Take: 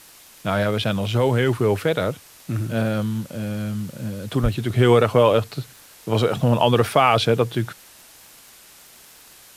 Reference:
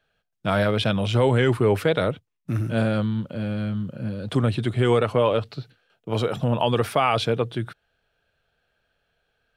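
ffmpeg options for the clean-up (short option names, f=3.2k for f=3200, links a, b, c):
-filter_complex "[0:a]adeclick=t=4,asplit=3[a][b][c];[a]afade=t=out:st=4.42:d=0.02[d];[b]highpass=f=140:w=0.5412,highpass=f=140:w=1.3066,afade=t=in:st=4.42:d=0.02,afade=t=out:st=4.54:d=0.02[e];[c]afade=t=in:st=4.54:d=0.02[f];[d][e][f]amix=inputs=3:normalize=0,afwtdn=0.005,asetnsamples=n=441:p=0,asendcmd='4.7 volume volume -4.5dB',volume=0dB"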